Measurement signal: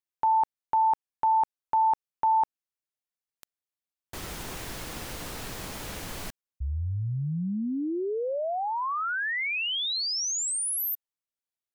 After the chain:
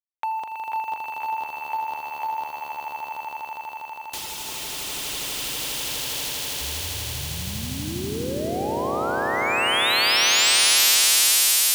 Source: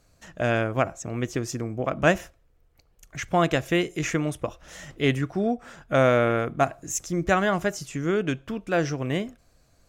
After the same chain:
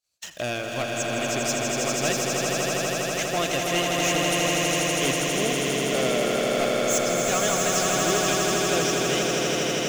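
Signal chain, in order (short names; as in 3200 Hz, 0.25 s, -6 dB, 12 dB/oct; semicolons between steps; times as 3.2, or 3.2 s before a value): expander -46 dBFS, range -33 dB; HPF 130 Hz 6 dB/oct; resonant high shelf 2300 Hz +7.5 dB, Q 1.5; reverb removal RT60 1.5 s; bell 170 Hz -5.5 dB 1.8 oct; in parallel at -7 dB: bit-crush 7-bit; on the sum: soft clip -20 dBFS; on a send: swelling echo 81 ms, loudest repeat 8, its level -4 dB; on the sum: mismatched tape noise reduction encoder only; gain -2.5 dB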